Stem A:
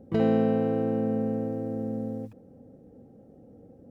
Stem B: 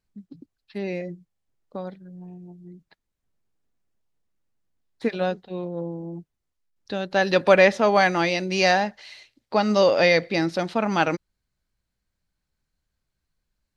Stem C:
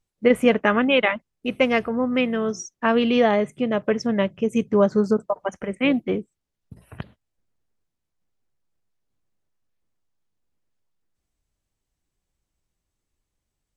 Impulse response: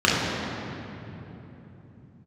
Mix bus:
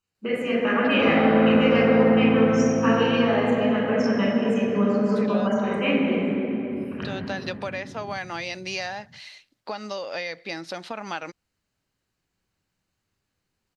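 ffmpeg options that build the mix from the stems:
-filter_complex "[0:a]asplit=2[a][b];[b]highpass=f=720:p=1,volume=22dB,asoftclip=type=tanh:threshold=-11dB[c];[a][c]amix=inputs=2:normalize=0,lowpass=f=1.3k:p=1,volume=-6dB,adelay=850,volume=-13dB,asplit=2[d][e];[e]volume=-3.5dB[f];[1:a]acompressor=threshold=-25dB:ratio=16,adelay=150,volume=1dB[g];[2:a]acompressor=threshold=-22dB:ratio=6,bandreject=f=3.4k:w=7.8,volume=-10.5dB,asplit=2[h][i];[i]volume=-3.5dB[j];[3:a]atrim=start_sample=2205[k];[f][j]amix=inputs=2:normalize=0[l];[l][k]afir=irnorm=-1:irlink=0[m];[d][g][h][m]amix=inputs=4:normalize=0,lowshelf=f=480:g=-11.5"

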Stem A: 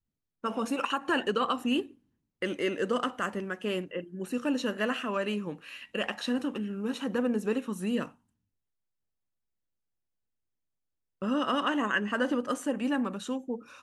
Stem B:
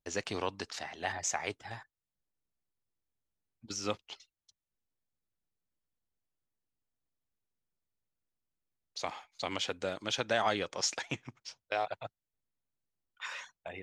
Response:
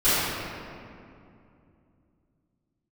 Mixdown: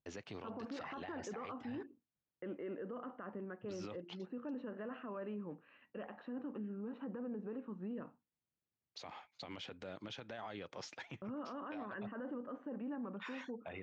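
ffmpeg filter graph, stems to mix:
-filter_complex "[0:a]agate=range=-33dB:threshold=-45dB:ratio=3:detection=peak,lowpass=1.2k,volume=-8.5dB[a];[1:a]lowshelf=f=180:g=11,acompressor=threshold=-36dB:ratio=6,volume=-3dB[b];[a][b]amix=inputs=2:normalize=0,highpass=120,lowpass=3.5k,alimiter=level_in=13dB:limit=-24dB:level=0:latency=1:release=19,volume=-13dB"

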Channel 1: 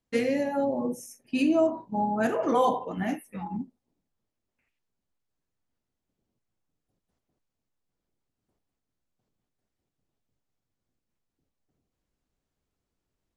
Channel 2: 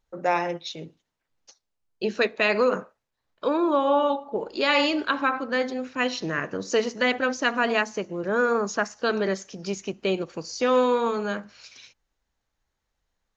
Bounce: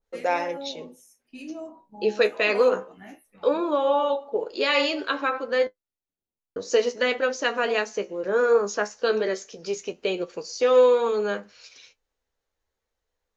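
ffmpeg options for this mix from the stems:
-filter_complex "[0:a]volume=-8.5dB[a];[1:a]equalizer=f=470:t=o:w=0.59:g=9.5,volume=0.5dB,asplit=3[b][c][d];[b]atrim=end=5.67,asetpts=PTS-STARTPTS,afade=t=out:st=5.666:d=0.004:c=hsin[e];[c]atrim=start=5.67:end=6.56,asetpts=PTS-STARTPTS,volume=0[f];[d]atrim=start=6.56,asetpts=PTS-STARTPTS,afade=t=in:d=0.004:c=hsin[g];[e][f][g]concat=n=3:v=0:a=1[h];[a][h]amix=inputs=2:normalize=0,equalizer=f=150:t=o:w=1.4:g=-7,flanger=delay=9.4:depth=6.1:regen=48:speed=0.18:shape=triangular,adynamicequalizer=threshold=0.00794:dfrequency=1800:dqfactor=0.7:tfrequency=1800:tqfactor=0.7:attack=5:release=100:ratio=0.375:range=2:mode=boostabove:tftype=highshelf"

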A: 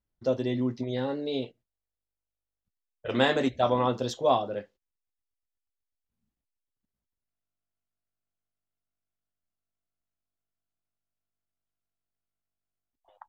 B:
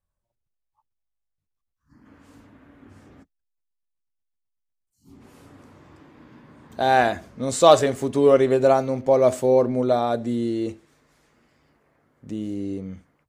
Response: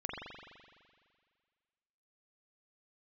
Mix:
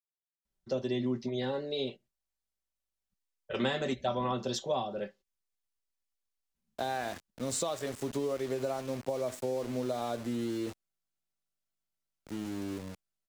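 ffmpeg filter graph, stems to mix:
-filter_complex "[0:a]aecho=1:1:5.2:0.53,adelay=450,volume=-3dB[a];[1:a]acompressor=threshold=-21dB:ratio=6,aeval=exprs='val(0)*gte(abs(val(0)),0.0188)':c=same,volume=-8dB[b];[a][b]amix=inputs=2:normalize=0,equalizer=f=6.3k:t=o:w=2.2:g=4.5,acrossover=split=210[c][d];[d]acompressor=threshold=-29dB:ratio=5[e];[c][e]amix=inputs=2:normalize=0"

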